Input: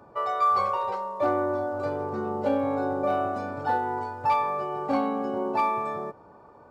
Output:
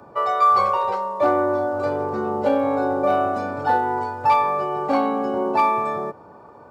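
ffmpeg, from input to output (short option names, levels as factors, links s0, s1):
-filter_complex "[0:a]acrossover=split=300|1300[s0][s1][s2];[s0]asoftclip=type=tanh:threshold=0.0178[s3];[s3][s1][s2]amix=inputs=3:normalize=0,highpass=74,volume=2.11"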